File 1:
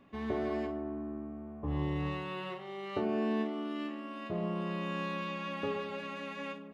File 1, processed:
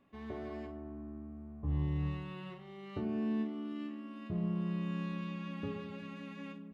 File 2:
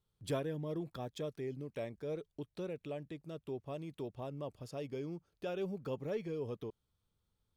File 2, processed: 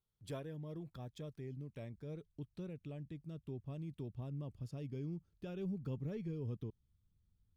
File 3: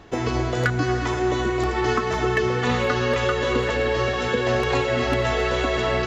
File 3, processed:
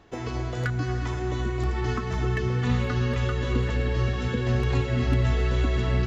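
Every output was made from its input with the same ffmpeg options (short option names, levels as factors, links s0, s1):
-af "asubboost=boost=7:cutoff=220,volume=0.376"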